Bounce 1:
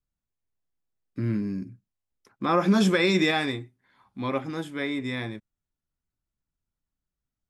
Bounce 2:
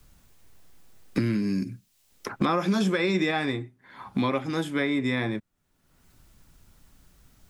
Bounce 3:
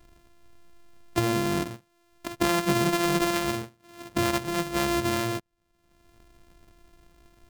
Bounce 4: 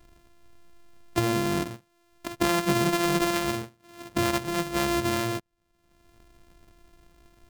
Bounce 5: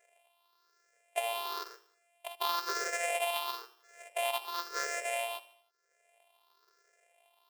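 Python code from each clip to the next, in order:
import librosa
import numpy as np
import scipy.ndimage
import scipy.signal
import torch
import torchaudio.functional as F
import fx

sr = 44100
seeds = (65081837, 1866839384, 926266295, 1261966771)

y1 = fx.band_squash(x, sr, depth_pct=100)
y2 = np.r_[np.sort(y1[:len(y1) // 128 * 128].reshape(-1, 128), axis=1).ravel(), y1[len(y1) // 128 * 128:]]
y3 = y2
y4 = fx.spec_ripple(y3, sr, per_octave=0.52, drift_hz=1.0, depth_db=18)
y4 = fx.brickwall_highpass(y4, sr, low_hz=380.0)
y4 = fx.echo_feedback(y4, sr, ms=78, feedback_pct=51, wet_db=-17.5)
y4 = F.gain(torch.from_numpy(y4), -9.0).numpy()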